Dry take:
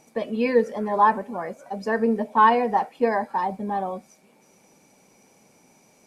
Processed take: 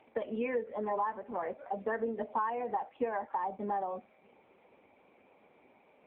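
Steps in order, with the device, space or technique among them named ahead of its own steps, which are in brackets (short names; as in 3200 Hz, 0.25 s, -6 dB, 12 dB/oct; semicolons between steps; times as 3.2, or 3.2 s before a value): voicemail (BPF 310–2900 Hz; compressor 6:1, threshold -30 dBFS, peak gain reduction 17 dB; AMR-NB 6.7 kbps 8000 Hz)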